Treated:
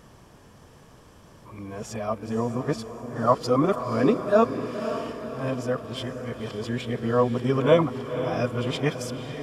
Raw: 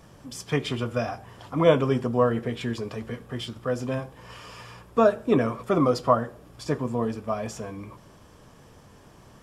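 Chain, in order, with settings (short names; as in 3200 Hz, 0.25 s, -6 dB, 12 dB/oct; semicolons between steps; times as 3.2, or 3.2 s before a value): whole clip reversed; diffused feedback echo 0.532 s, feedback 56%, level -9.5 dB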